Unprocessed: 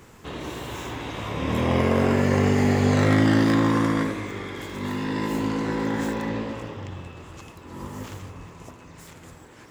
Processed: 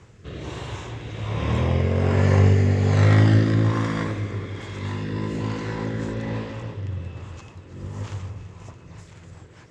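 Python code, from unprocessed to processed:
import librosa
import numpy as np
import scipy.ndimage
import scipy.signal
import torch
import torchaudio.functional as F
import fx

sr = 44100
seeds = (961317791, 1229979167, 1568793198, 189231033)

p1 = scipy.signal.sosfilt(scipy.signal.butter(4, 7700.0, 'lowpass', fs=sr, output='sos'), x)
p2 = fx.peak_eq(p1, sr, hz=260.0, db=-6.5, octaves=0.44)
p3 = fx.rotary_switch(p2, sr, hz=1.2, then_hz=5.0, switch_at_s=8.23)
p4 = fx.peak_eq(p3, sr, hz=100.0, db=9.5, octaves=1.0)
y = p4 + fx.echo_feedback(p4, sr, ms=332, feedback_pct=53, wet_db=-15.0, dry=0)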